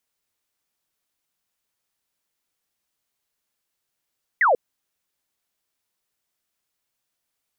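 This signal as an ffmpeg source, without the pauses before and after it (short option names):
-f lavfi -i "aevalsrc='0.2*clip(t/0.002,0,1)*clip((0.14-t)/0.002,0,1)*sin(2*PI*2100*0.14/log(450/2100)*(exp(log(450/2100)*t/0.14)-1))':d=0.14:s=44100"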